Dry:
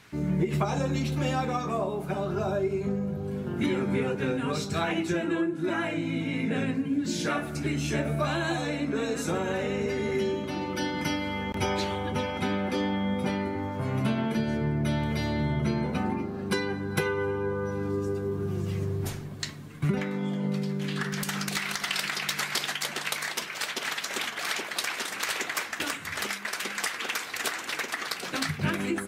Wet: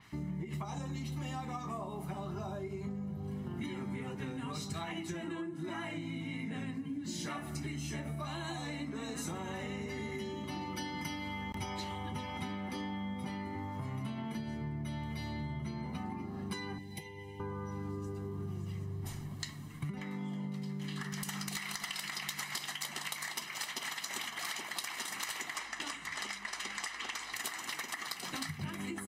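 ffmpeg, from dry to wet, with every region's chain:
ffmpeg -i in.wav -filter_complex "[0:a]asettb=1/sr,asplit=3[link_01][link_02][link_03];[link_01]atrim=end=16.784[link_04];[link_02]atrim=start=16.78:end=17.4,asetpts=PTS-STARTPTS,afade=type=in:duration=0.004:curve=qsin,afade=type=out:start_time=0.616:duration=0.004:curve=qsin,acrossover=split=160|1800[link_05][link_06][link_07];[link_05]acompressor=threshold=-50dB:ratio=4[link_08];[link_06]acompressor=threshold=-43dB:ratio=4[link_09];[link_07]acompressor=threshold=-47dB:ratio=4[link_10];[link_08][link_09][link_10]amix=inputs=3:normalize=0,asuperstop=centerf=1300:order=8:qfactor=1.6[link_11];[link_03]atrim=start=17.396[link_12];[link_04][link_11]acrossfade=duration=0.004:curve1=hsin:curve2=qsin[link_13];[link_13][link_12]acrossfade=duration=0.004:curve1=qsin:curve2=hsin,asettb=1/sr,asplit=3[link_14][link_15][link_16];[link_14]atrim=end=25.554[link_17];[link_15]atrim=start=25.55:end=27.33,asetpts=PTS-STARTPTS,afade=type=in:duration=0.004:curve=qsin,afade=type=out:start_time=1.776:duration=0.004:curve=qsin,highpass=210,lowpass=7600,aeval=exprs='val(0)+0.000708*(sin(2*PI*50*n/s)+sin(2*PI*2*50*n/s)/2+sin(2*PI*3*50*n/s)/3+sin(2*PI*4*50*n/s)/4+sin(2*PI*5*50*n/s)/5)':channel_layout=same[link_18];[link_16]atrim=start=27.326[link_19];[link_17][link_18]acrossfade=duration=0.004:curve1=hsin:curve2=qsin[link_20];[link_20][link_19]acrossfade=duration=0.004:curve1=qsin:curve2=hsin,aecho=1:1:1:0.56,acompressor=threshold=-31dB:ratio=6,adynamicequalizer=threshold=0.00316:dfrequency=5000:dqfactor=0.7:tfrequency=5000:tqfactor=0.7:attack=5:release=100:ratio=0.375:range=2:mode=boostabove:tftype=highshelf,volume=-5.5dB" out.wav

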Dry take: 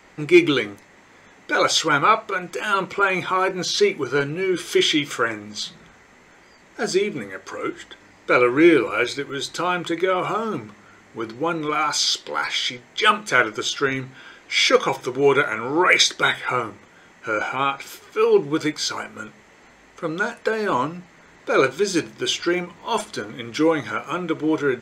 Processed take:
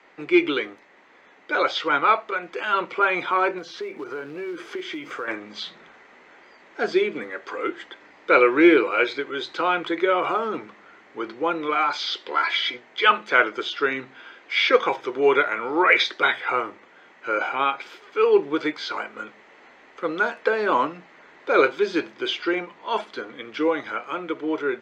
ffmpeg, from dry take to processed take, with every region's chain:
ffmpeg -i in.wav -filter_complex "[0:a]asettb=1/sr,asplit=3[link_01][link_02][link_03];[link_01]atrim=end=3.584[link_04];[link_02]atrim=start=3.58:end=5.28,asetpts=PTS-STARTPTS,afade=type=in:duration=0.004:curve=qsin,afade=type=out:start_time=1.696:duration=0.004:curve=qsin,equalizer=frequency=3600:width_type=o:width=1.2:gain=-10.5,acompressor=threshold=-28dB:ratio=6:attack=3.2:release=140:knee=1:detection=peak,acrusher=bits=5:mode=log:mix=0:aa=0.000001[link_05];[link_03]atrim=start=5.276[link_06];[link_04][link_05]acrossfade=duration=0.004:curve1=hsin:curve2=qsin[link_07];[link_07][link_06]acrossfade=duration=0.004:curve1=qsin:curve2=hsin,asettb=1/sr,asplit=3[link_08][link_09][link_10];[link_08]atrim=end=12.314[link_11];[link_09]atrim=start=12.31:end=12.74,asetpts=PTS-STARTPTS,afade=type=in:duration=0.004:curve=qsin,afade=type=out:start_time=0.426:duration=0.004:curve=qsin,equalizer=frequency=240:width_type=o:width=0.42:gain=-9,aecho=1:1:3:0.77,atrim=end_sample=18963[link_12];[link_10]atrim=start=12.736[link_13];[link_11][link_12]acrossfade=duration=0.004:curve1=hsin:curve2=qsin[link_14];[link_14][link_13]acrossfade=duration=0.004:curve1=qsin:curve2=hsin,acrossover=split=4800[link_15][link_16];[link_16]acompressor=threshold=-42dB:ratio=4:attack=1:release=60[link_17];[link_15][link_17]amix=inputs=2:normalize=0,acrossover=split=260 4500:gain=0.112 1 0.0891[link_18][link_19][link_20];[link_18][link_19][link_20]amix=inputs=3:normalize=0,dynaudnorm=framelen=360:gausssize=17:maxgain=11.5dB,volume=-2.5dB" out.wav

